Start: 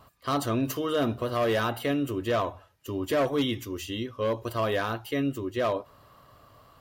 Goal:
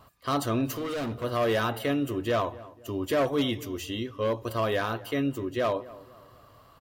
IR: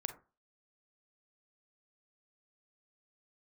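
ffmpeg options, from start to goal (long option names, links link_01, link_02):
-filter_complex "[0:a]asettb=1/sr,asplit=3[link_01][link_02][link_03];[link_01]atrim=end=0.694[link_04];[link_02]atrim=start=0.69:end=1.24,asetpts=PTS-STARTPTS,afade=type=in:duration=0.004:curve=qsin,afade=type=out:start_time=0.546:duration=0.004:curve=qsin,asoftclip=type=hard:threshold=-29.5dB[link_05];[link_03]atrim=start=1.236[link_06];[link_04][link_05]acrossfade=duration=0.004:curve1=hsin:curve2=qsin[link_07];[link_07][link_06]acrossfade=duration=0.004:curve1=qsin:curve2=hsin,asplit=2[link_08][link_09];[link_09]adelay=249,lowpass=frequency=1400:poles=1,volume=-18dB,asplit=2[link_10][link_11];[link_11]adelay=249,lowpass=frequency=1400:poles=1,volume=0.4,asplit=2[link_12][link_13];[link_13]adelay=249,lowpass=frequency=1400:poles=1,volume=0.4[link_14];[link_08][link_10][link_12][link_14]amix=inputs=4:normalize=0"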